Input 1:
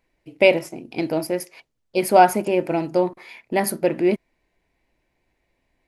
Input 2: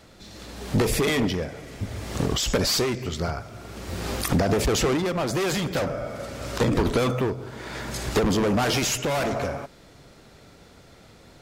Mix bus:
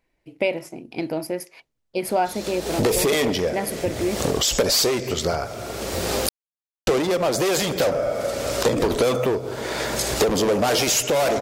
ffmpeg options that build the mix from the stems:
-filter_complex "[0:a]volume=-1.5dB[a];[1:a]equalizer=f=530:w=0.92:g=11.5,crystalizer=i=5.5:c=0,highshelf=f=6.8k:g=-8,adelay=2050,volume=2dB,asplit=3[b][c][d];[b]atrim=end=6.29,asetpts=PTS-STARTPTS,afade=t=out:st=6.286:d=0.004:c=hsin[e];[c]atrim=start=6.29:end=6.87,asetpts=PTS-STARTPTS,volume=0[f];[d]atrim=start=6.87,asetpts=PTS-STARTPTS,afade=t=in:d=0.004:c=hsin[g];[e][f][g]concat=n=3:v=0:a=1[h];[a][h]amix=inputs=2:normalize=0,acompressor=threshold=-23dB:ratio=2"

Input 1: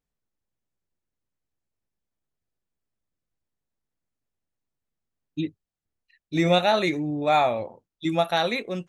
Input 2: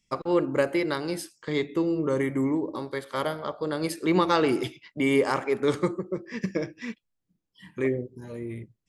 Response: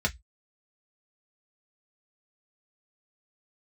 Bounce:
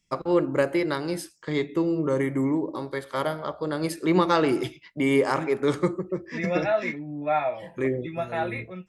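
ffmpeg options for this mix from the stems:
-filter_complex "[0:a]lowpass=f=2.3k:t=q:w=1.7,lowshelf=f=190:g=-9.5,flanger=delay=4.5:depth=3.4:regen=58:speed=0.23:shape=triangular,volume=-9dB,asplit=2[a][b];[b]volume=-4.5dB[c];[1:a]volume=0.5dB,asplit=2[d][e];[e]volume=-21.5dB[f];[2:a]atrim=start_sample=2205[g];[c][f]amix=inputs=2:normalize=0[h];[h][g]afir=irnorm=-1:irlink=0[i];[a][d][i]amix=inputs=3:normalize=0"

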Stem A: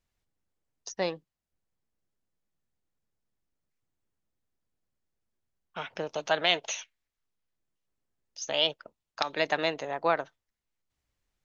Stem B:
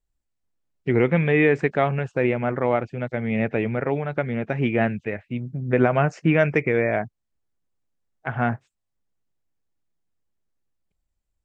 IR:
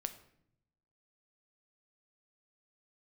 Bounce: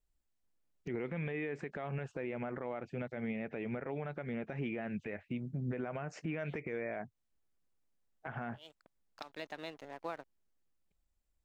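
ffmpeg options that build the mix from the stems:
-filter_complex "[0:a]equalizer=f=240:w=1.8:g=9.5,aeval=exprs='sgn(val(0))*max(abs(val(0))-0.00891,0)':c=same,volume=-13dB[a];[1:a]equalizer=f=110:t=o:w=0.44:g=-8,acompressor=threshold=-20dB:ratio=6,volume=-2.5dB,asplit=2[b][c];[c]apad=whole_len=504685[d];[a][d]sidechaincompress=threshold=-54dB:ratio=8:attack=49:release=180[e];[e][b]amix=inputs=2:normalize=0,alimiter=level_in=5dB:limit=-24dB:level=0:latency=1:release=195,volume=-5dB"

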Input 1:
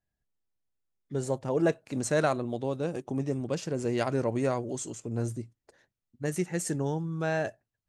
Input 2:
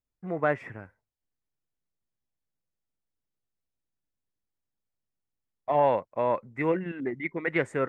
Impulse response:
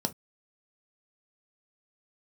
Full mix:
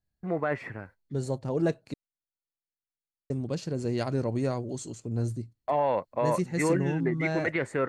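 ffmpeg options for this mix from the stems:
-filter_complex "[0:a]lowshelf=f=280:g=9,volume=-4.5dB,asplit=3[a][b][c];[a]atrim=end=1.94,asetpts=PTS-STARTPTS,afade=t=out:st=1.936:d=0.004:c=hsin[d];[b]atrim=start=1.94:end=3.3,asetpts=PTS-STARTPTS,volume=0[e];[c]atrim=start=3.3,asetpts=PTS-STARTPTS,afade=t=in:d=0.004:c=hsin[f];[d][e][f]concat=n=3:v=0:a=1[g];[1:a]agate=range=-19dB:threshold=-52dB:ratio=16:detection=peak,alimiter=limit=-20dB:level=0:latency=1:release=15,volume=2.5dB[h];[g][h]amix=inputs=2:normalize=0,equalizer=f=4.3k:w=7.4:g=11.5"

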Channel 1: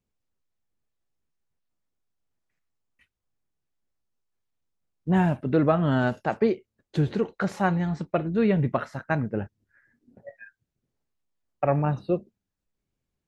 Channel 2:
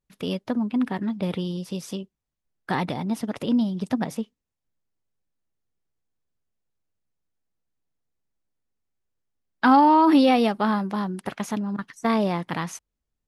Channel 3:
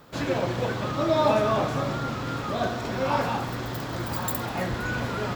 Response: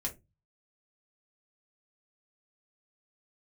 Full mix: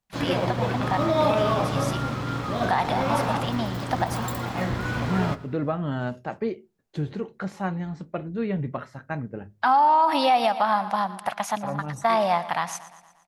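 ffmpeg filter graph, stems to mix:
-filter_complex "[0:a]volume=-7.5dB,asplit=2[a][b];[b]volume=-10dB[c];[1:a]lowshelf=f=530:t=q:w=3:g=-10,volume=3dB,asplit=3[d][e][f];[e]volume=-16.5dB[g];[2:a]highshelf=f=7.3k:g=-10.5,aeval=exprs='sgn(val(0))*max(abs(val(0))-0.00708,0)':c=same,volume=-0.5dB,asplit=3[h][i][j];[i]volume=-7.5dB[k];[j]volume=-16.5dB[l];[f]apad=whole_len=585430[m];[a][m]sidechaincompress=threshold=-36dB:ratio=8:attack=16:release=148[n];[3:a]atrim=start_sample=2205[o];[c][k]amix=inputs=2:normalize=0[p];[p][o]afir=irnorm=-1:irlink=0[q];[g][l]amix=inputs=2:normalize=0,aecho=0:1:117|234|351|468|585|702|819|936:1|0.54|0.292|0.157|0.085|0.0459|0.0248|0.0134[r];[n][d][h][q][r]amix=inputs=5:normalize=0,alimiter=limit=-11.5dB:level=0:latency=1:release=123"

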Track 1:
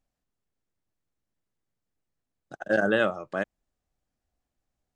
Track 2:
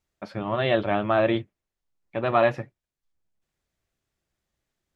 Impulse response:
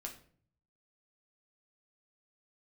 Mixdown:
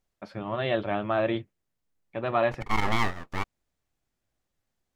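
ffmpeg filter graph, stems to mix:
-filter_complex "[0:a]aeval=exprs='abs(val(0))':c=same,volume=0dB[a];[1:a]volume=-4.5dB[b];[a][b]amix=inputs=2:normalize=0"

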